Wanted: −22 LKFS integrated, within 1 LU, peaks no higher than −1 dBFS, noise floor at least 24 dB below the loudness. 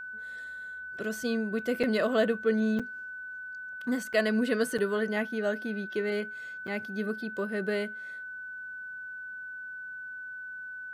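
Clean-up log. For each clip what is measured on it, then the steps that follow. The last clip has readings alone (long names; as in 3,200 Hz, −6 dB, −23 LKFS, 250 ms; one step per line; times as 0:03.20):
number of dropouts 5; longest dropout 6.0 ms; interfering tone 1,500 Hz; level of the tone −38 dBFS; integrated loudness −32.0 LKFS; sample peak −14.0 dBFS; target loudness −22.0 LKFS
→ repair the gap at 0:01.83/0:02.79/0:04.13/0:04.78/0:06.67, 6 ms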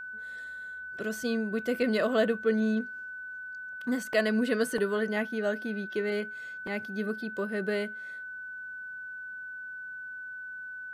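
number of dropouts 0; interfering tone 1,500 Hz; level of the tone −38 dBFS
→ notch filter 1,500 Hz, Q 30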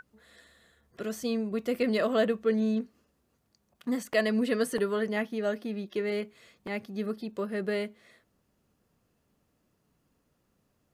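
interfering tone none found; integrated loudness −30.5 LKFS; sample peak −14.0 dBFS; target loudness −22.0 LKFS
→ level +8.5 dB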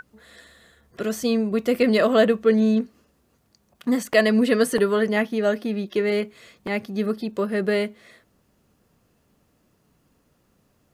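integrated loudness −22.0 LKFS; sample peak −5.5 dBFS; background noise floor −66 dBFS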